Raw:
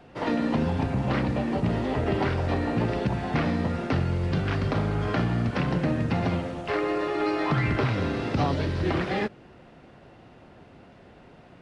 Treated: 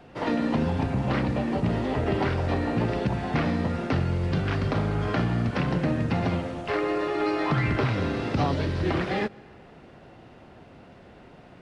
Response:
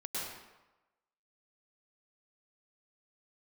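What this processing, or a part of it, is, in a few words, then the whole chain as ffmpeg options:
ducked reverb: -filter_complex "[0:a]asplit=3[s0][s1][s2];[1:a]atrim=start_sample=2205[s3];[s1][s3]afir=irnorm=-1:irlink=0[s4];[s2]apad=whole_len=512047[s5];[s4][s5]sidechaincompress=threshold=0.00708:ratio=8:attack=16:release=366,volume=0.282[s6];[s0][s6]amix=inputs=2:normalize=0"

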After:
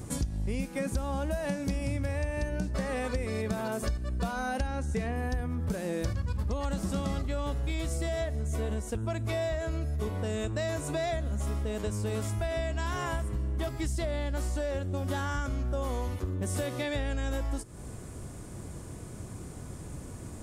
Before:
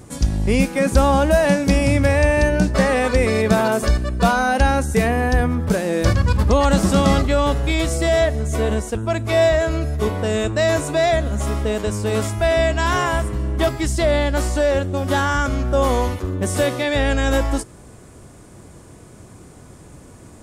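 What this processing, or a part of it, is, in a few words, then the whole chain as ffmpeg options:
ASMR close-microphone chain: -filter_complex "[0:a]asettb=1/sr,asplit=3[s0][s1][s2];[s0]atrim=end=4.674[s3];[s1]atrim=start=4.67:end=5.16,asetpts=PTS-STARTPTS,afade=t=in:d=0.004:c=qsin,afade=t=out:st=0.486:d=0.004:c=qsin,lowpass=6800[s4];[s2]atrim=start=5.156[s5];[s3][s4]acrossfade=d=0.004:c1=hsin:c2=qsin[s6];[s6][s5]acrossfade=d=0.004:c1=qsin:c2=hsin,lowshelf=f=200:g=7,acompressor=threshold=0.0501:ratio=6,highshelf=f=7200:g=5,volume=0.668"

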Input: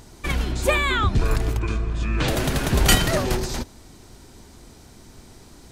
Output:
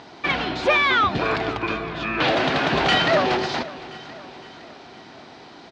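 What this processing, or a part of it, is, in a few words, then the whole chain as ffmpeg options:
overdrive pedal into a guitar cabinet: -filter_complex "[0:a]asplit=2[s0][s1];[s1]highpass=f=720:p=1,volume=11.2,asoftclip=type=tanh:threshold=0.668[s2];[s0][s2]amix=inputs=2:normalize=0,lowpass=f=4800:p=1,volume=0.501,highpass=83,equalizer=f=160:t=q:w=4:g=5,equalizer=f=290:t=q:w=4:g=4,equalizer=f=730:t=q:w=4:g=6,lowpass=f=4400:w=0.5412,lowpass=f=4400:w=1.3066,lowshelf=f=180:g=-3.5,aecho=1:1:512|1024|1536|2048|2560:0.126|0.068|0.0367|0.0198|0.0107,volume=0.531"

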